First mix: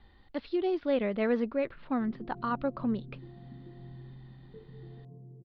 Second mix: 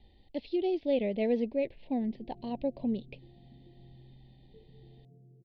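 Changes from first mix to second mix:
background −7.0 dB
master: add Chebyshev band-stop filter 690–2,500 Hz, order 2

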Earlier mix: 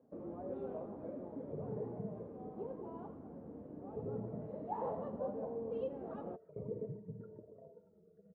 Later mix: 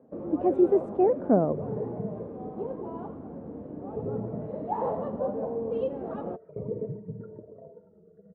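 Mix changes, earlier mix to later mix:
speech: unmuted
first sound +10.0 dB
second sound +9.0 dB

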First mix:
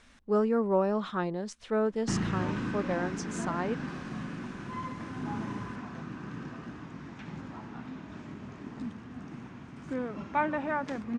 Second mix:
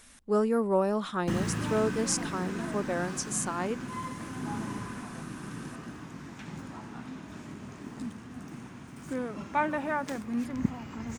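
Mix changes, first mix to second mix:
background: entry −0.80 s
master: remove high-frequency loss of the air 130 metres

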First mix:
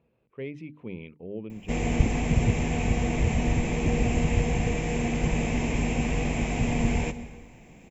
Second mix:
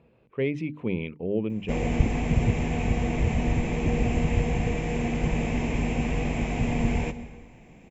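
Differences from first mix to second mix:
speech +9.5 dB
background: add high-shelf EQ 5,800 Hz −10 dB

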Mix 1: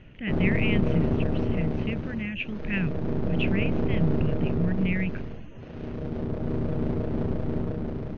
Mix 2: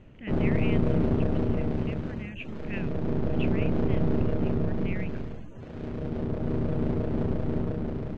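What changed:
speech −8.5 dB
master: remove linear-phase brick-wall low-pass 6,700 Hz

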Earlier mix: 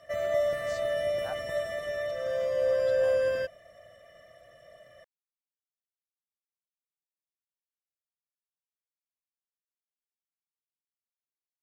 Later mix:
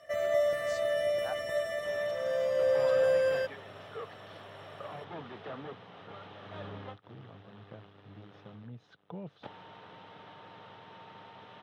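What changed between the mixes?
first sound: add low-shelf EQ 150 Hz −8.5 dB
second sound: unmuted

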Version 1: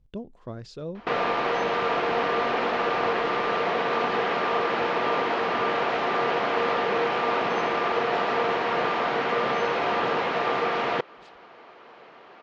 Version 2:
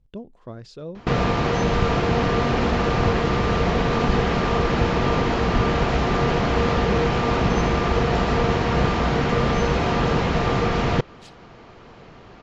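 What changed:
first sound: remove band-pass filter 470–3,400 Hz
second sound: remove head-to-tape spacing loss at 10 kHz 22 dB

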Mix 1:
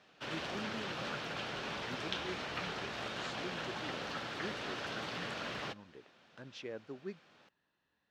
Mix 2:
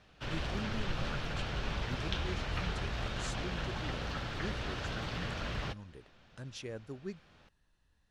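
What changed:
speech: remove low-pass filter 3,800 Hz 12 dB per octave
master: remove high-pass filter 230 Hz 12 dB per octave

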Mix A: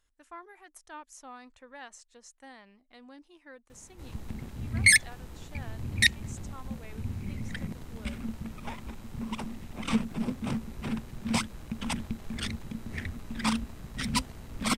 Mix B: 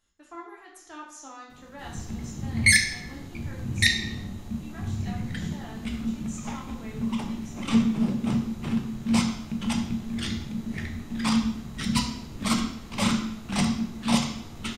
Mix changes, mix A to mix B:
background: entry −2.20 s
reverb: on, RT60 0.65 s

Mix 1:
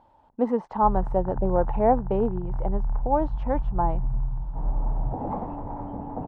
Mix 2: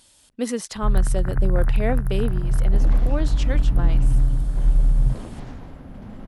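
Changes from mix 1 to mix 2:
first sound +9.0 dB
second sound: entry −2.40 s
master: remove low-pass with resonance 880 Hz, resonance Q 6.7

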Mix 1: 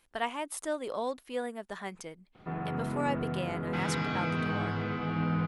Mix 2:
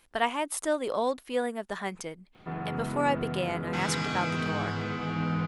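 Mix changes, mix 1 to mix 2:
speech +5.5 dB
background: remove high-frequency loss of the air 210 metres

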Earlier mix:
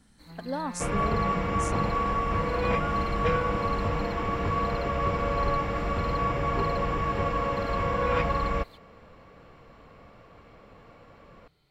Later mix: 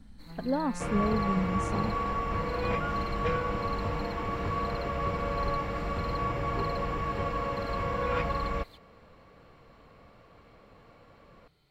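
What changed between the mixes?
speech: add spectral tilt −3 dB per octave
second sound −4.0 dB

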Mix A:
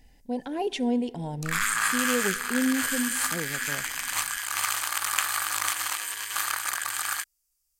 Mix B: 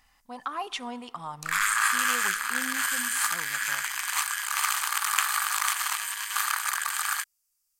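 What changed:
speech: remove Butterworth band-reject 1,200 Hz, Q 2.1
master: add low shelf with overshoot 650 Hz −13 dB, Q 1.5

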